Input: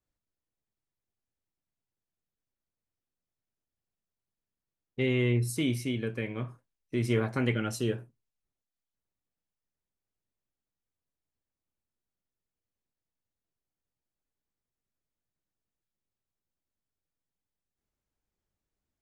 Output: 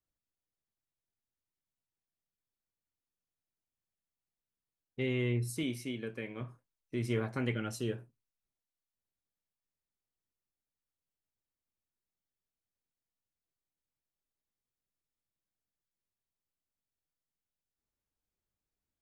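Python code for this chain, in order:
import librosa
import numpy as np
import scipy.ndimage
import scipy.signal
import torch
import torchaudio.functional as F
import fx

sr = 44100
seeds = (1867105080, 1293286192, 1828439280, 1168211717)

y = fx.peak_eq(x, sr, hz=71.0, db=-15.0, octaves=1.2, at=(5.63, 6.41))
y = y * librosa.db_to_amplitude(-5.5)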